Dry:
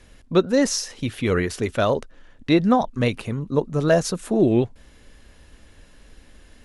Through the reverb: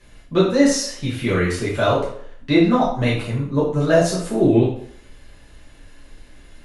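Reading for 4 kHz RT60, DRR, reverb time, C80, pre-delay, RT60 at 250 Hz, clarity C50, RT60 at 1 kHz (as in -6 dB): 0.50 s, -8.0 dB, 0.60 s, 8.0 dB, 4 ms, 0.55 s, 4.0 dB, 0.60 s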